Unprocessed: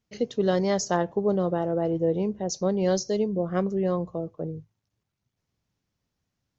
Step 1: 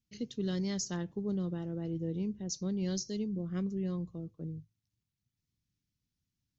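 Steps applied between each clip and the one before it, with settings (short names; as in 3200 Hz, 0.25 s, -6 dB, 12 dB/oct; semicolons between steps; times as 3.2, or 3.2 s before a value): EQ curve 140 Hz 0 dB, 290 Hz -3 dB, 640 Hz -20 dB, 2300 Hz -5 dB, 4000 Hz -1 dB; gain -4.5 dB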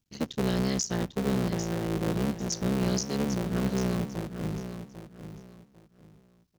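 cycle switcher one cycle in 3, muted; on a send: feedback echo 0.797 s, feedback 26%, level -10 dB; on the sum: gain +8 dB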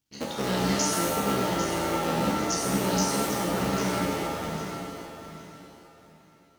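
low shelf 260 Hz -10 dB; shimmer reverb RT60 1.1 s, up +7 st, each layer -2 dB, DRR -2 dB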